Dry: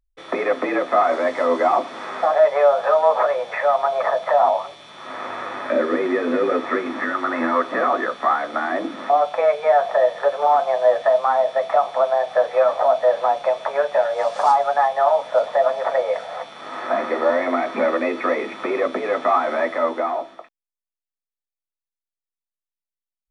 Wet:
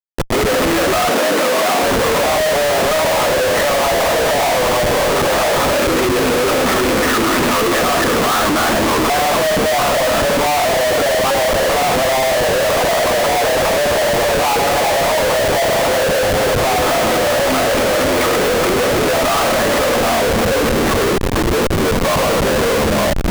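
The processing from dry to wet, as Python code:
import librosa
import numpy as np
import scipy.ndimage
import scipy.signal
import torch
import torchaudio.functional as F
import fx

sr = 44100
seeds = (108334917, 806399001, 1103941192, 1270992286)

p1 = fx.rattle_buzz(x, sr, strikes_db=-30.0, level_db=-17.0)
p2 = 10.0 ** (-18.5 / 20.0) * np.tanh(p1 / 10.0 ** (-18.5 / 20.0))
p3 = p1 + (p2 * 10.0 ** (-3.5 / 20.0))
p4 = fx.room_early_taps(p3, sr, ms=(22, 69), db=(-9.0, -5.0))
p5 = fx.tremolo_shape(p4, sr, shape='saw_up', hz=4.6, depth_pct=85)
p6 = fx.echo_pitch(p5, sr, ms=439, semitones=-2, count=2, db_per_echo=-6.0)
p7 = fx.schmitt(p6, sr, flips_db=-30.5)
p8 = fx.highpass(p7, sr, hz=170.0, slope=24, at=(1.09, 1.83))
y = p8 * 10.0 ** (4.5 / 20.0)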